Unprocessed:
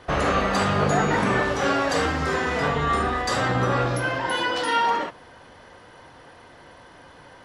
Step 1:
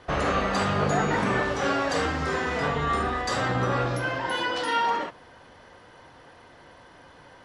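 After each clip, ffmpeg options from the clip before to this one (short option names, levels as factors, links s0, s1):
-af "lowpass=9900,volume=0.708"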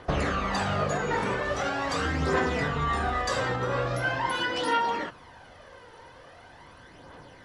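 -af "alimiter=limit=0.119:level=0:latency=1:release=363,aphaser=in_gain=1:out_gain=1:delay=2.3:decay=0.44:speed=0.42:type=triangular"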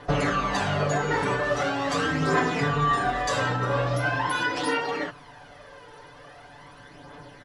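-af "aecho=1:1:6.9:0.98"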